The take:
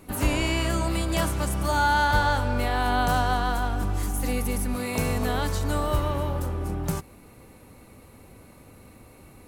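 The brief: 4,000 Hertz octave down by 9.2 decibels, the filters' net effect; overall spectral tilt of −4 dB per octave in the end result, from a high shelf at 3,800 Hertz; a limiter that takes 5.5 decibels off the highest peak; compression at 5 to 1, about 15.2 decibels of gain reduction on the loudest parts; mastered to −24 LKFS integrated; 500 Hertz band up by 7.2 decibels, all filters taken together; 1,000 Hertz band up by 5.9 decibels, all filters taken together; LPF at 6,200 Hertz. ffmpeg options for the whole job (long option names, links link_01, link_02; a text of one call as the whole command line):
ffmpeg -i in.wav -af "lowpass=6200,equalizer=frequency=500:width_type=o:gain=7.5,equalizer=frequency=1000:width_type=o:gain=5.5,highshelf=frequency=3800:gain=-6,equalizer=frequency=4000:width_type=o:gain=-9,acompressor=threshold=-31dB:ratio=5,volume=11dB,alimiter=limit=-14dB:level=0:latency=1" out.wav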